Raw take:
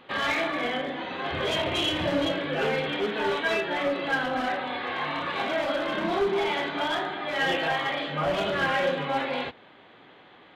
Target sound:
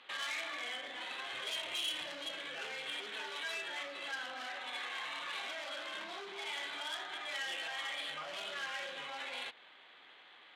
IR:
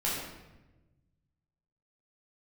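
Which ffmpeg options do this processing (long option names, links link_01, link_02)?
-af "alimiter=level_in=4dB:limit=-24dB:level=0:latency=1:release=105,volume=-4dB,adynamicsmooth=sensitivity=7:basefreq=4500,aderivative,volume=9dB"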